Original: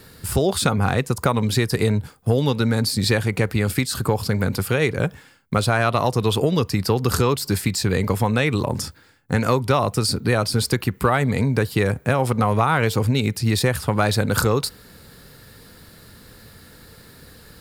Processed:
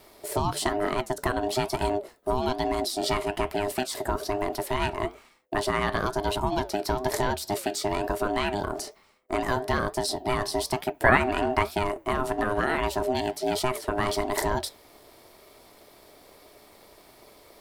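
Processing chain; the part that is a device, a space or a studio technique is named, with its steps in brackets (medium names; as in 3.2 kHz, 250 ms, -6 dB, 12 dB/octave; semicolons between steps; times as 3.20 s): 11.04–11.71 s: peaking EQ 1.2 kHz +10 dB 2.2 oct; alien voice (ring modulator 510 Hz; flange 1.1 Hz, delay 4.6 ms, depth 7.2 ms, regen -80%)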